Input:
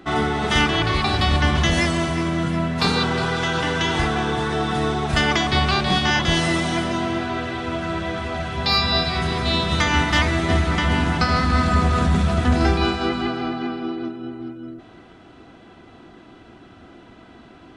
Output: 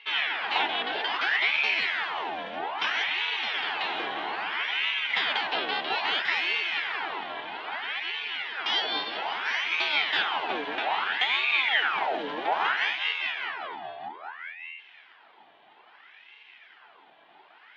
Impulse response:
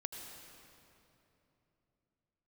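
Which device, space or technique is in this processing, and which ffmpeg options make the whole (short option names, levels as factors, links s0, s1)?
voice changer toy: -af "aeval=exprs='val(0)*sin(2*PI*1400*n/s+1400*0.75/0.61*sin(2*PI*0.61*n/s))':c=same,highpass=510,equalizer=f=540:t=q:w=4:g=-10,equalizer=f=820:t=q:w=4:g=4,equalizer=f=1200:t=q:w=4:g=-5,equalizer=f=3200:t=q:w=4:g=6,lowpass=f=3600:w=0.5412,lowpass=f=3600:w=1.3066,volume=0.596"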